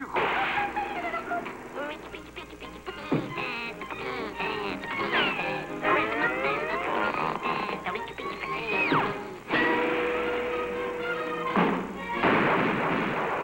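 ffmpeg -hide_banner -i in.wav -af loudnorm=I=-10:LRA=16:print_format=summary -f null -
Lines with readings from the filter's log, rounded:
Input Integrated:    -27.7 LUFS
Input True Peak:     -11.3 dBTP
Input LRA:             6.2 LU
Input Threshold:     -37.9 LUFS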